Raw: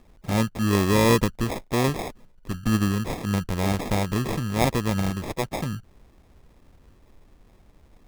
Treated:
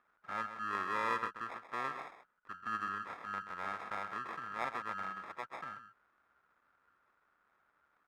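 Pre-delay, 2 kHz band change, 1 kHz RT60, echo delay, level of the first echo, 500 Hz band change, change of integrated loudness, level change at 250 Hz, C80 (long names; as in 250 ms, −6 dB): no reverb audible, −8.0 dB, no reverb audible, 130 ms, −10.0 dB, −21.5 dB, −15.0 dB, −28.5 dB, no reverb audible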